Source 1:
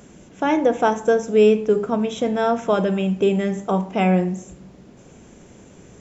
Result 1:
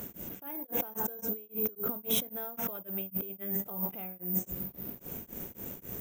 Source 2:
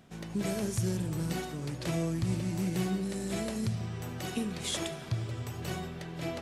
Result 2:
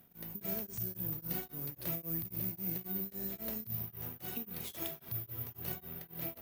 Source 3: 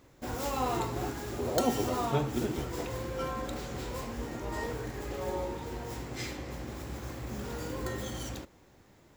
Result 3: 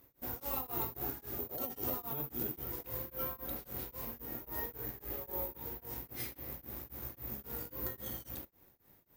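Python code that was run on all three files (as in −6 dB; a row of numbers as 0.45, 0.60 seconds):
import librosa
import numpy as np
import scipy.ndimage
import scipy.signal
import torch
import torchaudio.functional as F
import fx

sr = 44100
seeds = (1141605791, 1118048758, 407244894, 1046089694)

y = fx.over_compress(x, sr, threshold_db=-31.0, ratio=-1.0)
y = (np.kron(scipy.signal.resample_poly(y, 1, 3), np.eye(3)[0]) * 3)[:len(y)]
y = y * np.abs(np.cos(np.pi * 3.7 * np.arange(len(y)) / sr))
y = F.gain(torch.from_numpy(y), -8.0).numpy()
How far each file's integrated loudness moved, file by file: −14.0, −4.0, −4.0 LU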